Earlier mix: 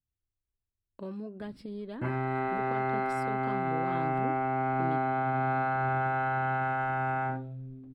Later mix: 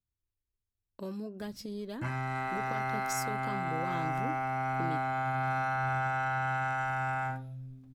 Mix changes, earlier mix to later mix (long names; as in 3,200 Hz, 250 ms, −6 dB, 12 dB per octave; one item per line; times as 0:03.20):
background: add parametric band 370 Hz −14.5 dB 1.1 octaves
master: remove moving average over 7 samples